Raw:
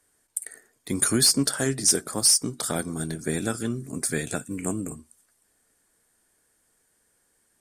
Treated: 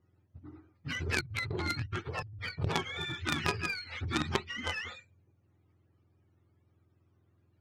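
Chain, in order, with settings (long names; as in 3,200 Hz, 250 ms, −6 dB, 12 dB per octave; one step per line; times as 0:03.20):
frequency axis turned over on the octave scale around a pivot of 750 Hz
low-pass filter 4,800 Hz 12 dB per octave
compressor whose output falls as the input rises −28 dBFS, ratio −1
harmonic generator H 3 −8 dB, 5 −18 dB, 6 −39 dB, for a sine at −13.5 dBFS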